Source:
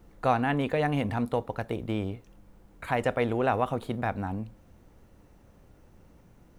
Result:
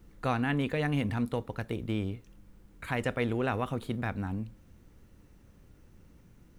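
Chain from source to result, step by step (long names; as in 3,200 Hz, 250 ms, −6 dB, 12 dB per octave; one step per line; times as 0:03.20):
parametric band 720 Hz −9 dB 1.3 octaves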